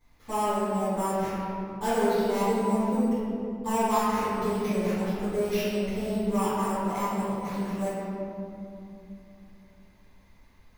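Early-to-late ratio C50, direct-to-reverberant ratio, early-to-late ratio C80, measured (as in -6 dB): -5.0 dB, -18.0 dB, -2.5 dB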